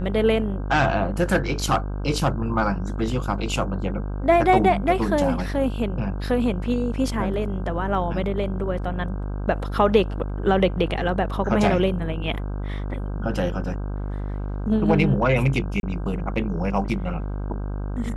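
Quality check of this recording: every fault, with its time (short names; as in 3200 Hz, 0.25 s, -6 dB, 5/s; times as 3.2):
buzz 50 Hz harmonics 32 -28 dBFS
15.8–15.83 gap 31 ms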